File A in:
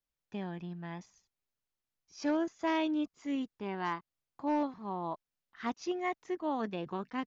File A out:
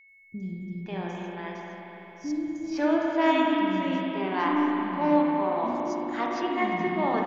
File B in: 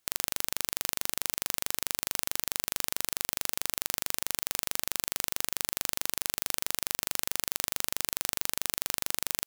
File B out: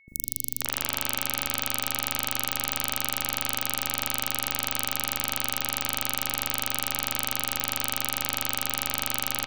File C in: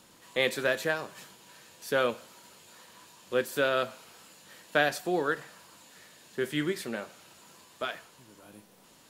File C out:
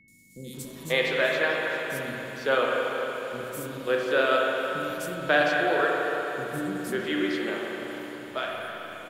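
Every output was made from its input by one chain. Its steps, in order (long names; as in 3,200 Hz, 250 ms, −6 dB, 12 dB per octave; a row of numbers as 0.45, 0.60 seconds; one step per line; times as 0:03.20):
three-band delay without the direct sound lows, highs, mids 80/540 ms, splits 270/5,700 Hz
spring reverb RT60 3.9 s, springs 37/57 ms, chirp 60 ms, DRR −2.5 dB
steady tone 2,200 Hz −60 dBFS
loudness normalisation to −27 LKFS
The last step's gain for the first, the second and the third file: +6.5, +3.5, +2.0 decibels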